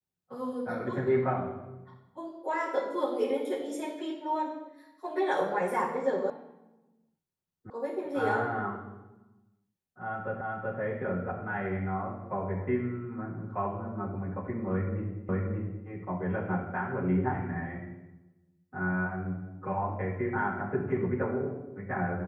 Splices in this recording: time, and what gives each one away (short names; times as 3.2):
6.3 sound cut off
7.7 sound cut off
10.41 repeat of the last 0.38 s
15.29 repeat of the last 0.58 s